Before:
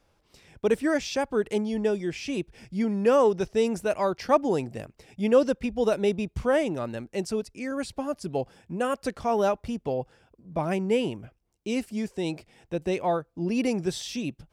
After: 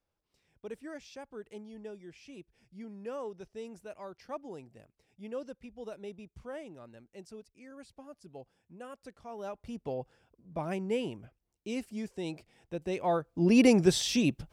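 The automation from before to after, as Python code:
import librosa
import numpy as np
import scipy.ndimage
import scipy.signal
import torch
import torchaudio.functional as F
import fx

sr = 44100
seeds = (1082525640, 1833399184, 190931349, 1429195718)

y = fx.gain(x, sr, db=fx.line((9.36, -19.0), (9.8, -7.5), (12.87, -7.5), (13.53, 4.5)))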